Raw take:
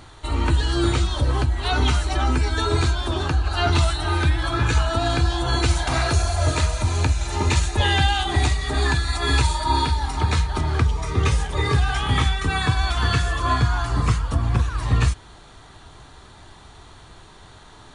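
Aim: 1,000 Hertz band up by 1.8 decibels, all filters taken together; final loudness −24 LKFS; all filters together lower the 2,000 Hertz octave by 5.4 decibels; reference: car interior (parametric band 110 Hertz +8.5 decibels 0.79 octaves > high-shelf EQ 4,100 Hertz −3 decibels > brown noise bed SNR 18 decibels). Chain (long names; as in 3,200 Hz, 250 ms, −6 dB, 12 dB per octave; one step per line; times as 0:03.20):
parametric band 110 Hz +8.5 dB 0.79 octaves
parametric band 1,000 Hz +4.5 dB
parametric band 2,000 Hz −8.5 dB
high-shelf EQ 4,100 Hz −3 dB
brown noise bed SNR 18 dB
level −5 dB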